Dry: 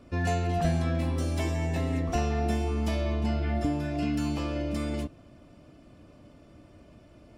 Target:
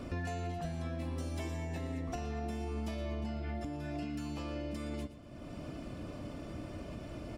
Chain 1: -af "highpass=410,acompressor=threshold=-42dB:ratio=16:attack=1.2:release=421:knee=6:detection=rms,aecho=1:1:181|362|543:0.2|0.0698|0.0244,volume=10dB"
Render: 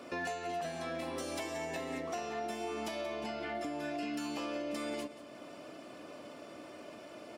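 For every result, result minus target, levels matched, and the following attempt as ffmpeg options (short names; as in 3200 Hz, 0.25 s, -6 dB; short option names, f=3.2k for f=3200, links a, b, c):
echo 63 ms late; 500 Hz band +4.0 dB
-af "highpass=410,acompressor=threshold=-42dB:ratio=16:attack=1.2:release=421:knee=6:detection=rms,aecho=1:1:118|236|354:0.2|0.0698|0.0244,volume=10dB"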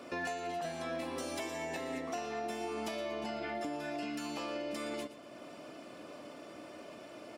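500 Hz band +4.0 dB
-af "acompressor=threshold=-42dB:ratio=16:attack=1.2:release=421:knee=6:detection=rms,aecho=1:1:118|236|354:0.2|0.0698|0.0244,volume=10dB"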